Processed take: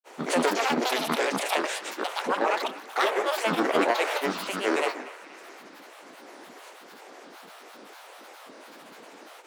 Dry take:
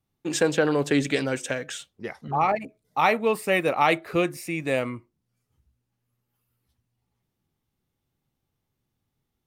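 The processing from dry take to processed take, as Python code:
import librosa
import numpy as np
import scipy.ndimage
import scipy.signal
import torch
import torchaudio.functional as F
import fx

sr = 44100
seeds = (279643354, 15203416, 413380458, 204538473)

p1 = fx.bin_compress(x, sr, power=0.4)
p2 = scipy.signal.sosfilt(scipy.signal.butter(6, 370.0, 'highpass', fs=sr, output='sos'), p1)
p3 = fx.granulator(p2, sr, seeds[0], grain_ms=100.0, per_s=29.0, spray_ms=100.0, spread_st=12)
p4 = p3 + fx.echo_banded(p3, sr, ms=237, feedback_pct=70, hz=1800.0, wet_db=-16.0, dry=0)
y = p4 * librosa.db_to_amplitude(-3.0)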